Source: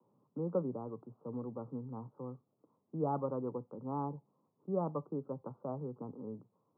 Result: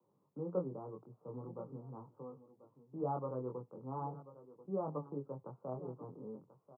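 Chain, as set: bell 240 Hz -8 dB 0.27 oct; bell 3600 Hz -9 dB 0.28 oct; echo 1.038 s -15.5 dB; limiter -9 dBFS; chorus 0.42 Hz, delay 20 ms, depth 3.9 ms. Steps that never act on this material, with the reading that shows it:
bell 3600 Hz: input band ends at 1400 Hz; limiter -9 dBFS: input peak -22.5 dBFS

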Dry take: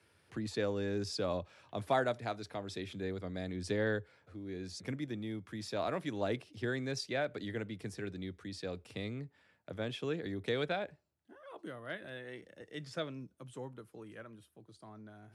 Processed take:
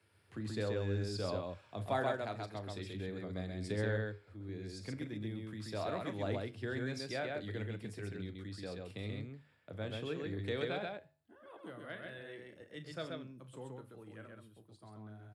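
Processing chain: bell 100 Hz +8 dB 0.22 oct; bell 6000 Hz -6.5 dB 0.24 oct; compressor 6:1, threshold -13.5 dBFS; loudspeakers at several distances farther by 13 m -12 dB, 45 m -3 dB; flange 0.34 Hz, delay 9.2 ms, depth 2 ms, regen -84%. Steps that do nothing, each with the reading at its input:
compressor, threshold -13.5 dBFS: input peak -18.5 dBFS

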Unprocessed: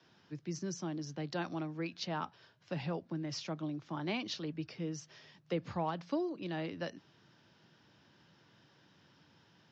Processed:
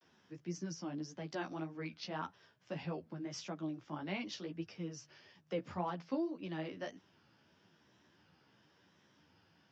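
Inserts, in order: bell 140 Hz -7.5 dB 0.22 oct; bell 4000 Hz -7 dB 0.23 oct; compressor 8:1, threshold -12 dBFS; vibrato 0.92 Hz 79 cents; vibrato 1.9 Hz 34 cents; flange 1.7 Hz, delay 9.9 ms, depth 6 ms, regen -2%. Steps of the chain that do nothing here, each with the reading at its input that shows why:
compressor, threshold -12 dBFS: input peak -23.0 dBFS

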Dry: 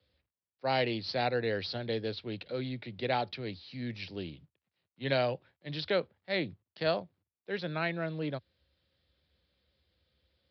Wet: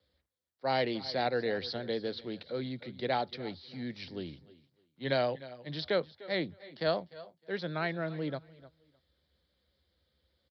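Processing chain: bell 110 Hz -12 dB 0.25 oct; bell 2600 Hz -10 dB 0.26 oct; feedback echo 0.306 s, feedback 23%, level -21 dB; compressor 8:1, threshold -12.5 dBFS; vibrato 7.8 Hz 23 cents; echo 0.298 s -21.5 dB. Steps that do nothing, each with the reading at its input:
compressor, threshold -12.5 dBFS: input peak -16.5 dBFS

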